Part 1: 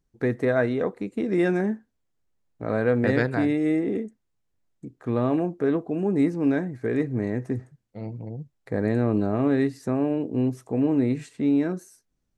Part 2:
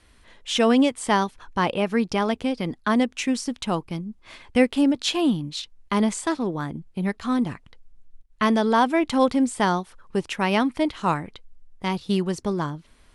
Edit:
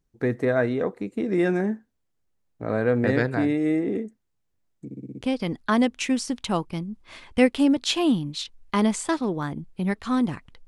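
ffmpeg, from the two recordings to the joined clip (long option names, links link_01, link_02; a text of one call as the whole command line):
ffmpeg -i cue0.wav -i cue1.wav -filter_complex "[0:a]apad=whole_dur=10.67,atrim=end=10.67,asplit=6[link_01][link_02][link_03][link_04][link_05][link_06];[link_01]atrim=end=4.912[link_07];[link_02]atrim=start=4.848:end=4.912[link_08];[link_03]atrim=start=4.848:end=4.912[link_09];[link_04]atrim=start=4.848:end=4.912[link_10];[link_05]atrim=start=4.848:end=4.912[link_11];[link_06]atrim=start=4.848:end=4.912[link_12];[1:a]atrim=start=2.388:end=7.85[link_13];[link_07][link_08]acrossfade=duration=0.004:curve1=hsin:curve2=hsin[link_14];[link_14][link_09]acrossfade=duration=0.004:curve1=hsin:curve2=hsin[link_15];[link_15][link_10]acrossfade=duration=0.004:curve1=hsin:curve2=hsin[link_16];[link_16][link_11]acrossfade=duration=0.004:curve1=hsin:curve2=hsin[link_17];[link_17][link_12]acrossfade=duration=0.004:curve1=hsin:curve2=hsin[link_18];[link_18][link_13]acrossfade=duration=0.004:curve1=hsin:curve2=hsin" out.wav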